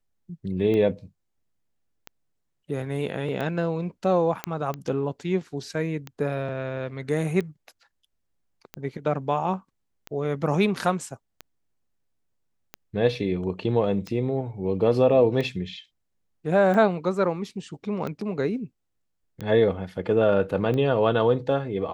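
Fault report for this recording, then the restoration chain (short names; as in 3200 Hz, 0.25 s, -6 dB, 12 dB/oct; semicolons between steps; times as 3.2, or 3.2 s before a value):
tick 45 rpm -19 dBFS
4.44 pop -11 dBFS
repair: de-click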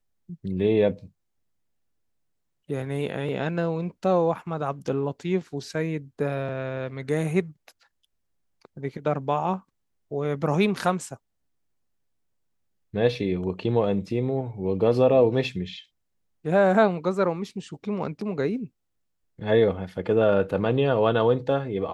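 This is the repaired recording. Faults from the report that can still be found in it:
none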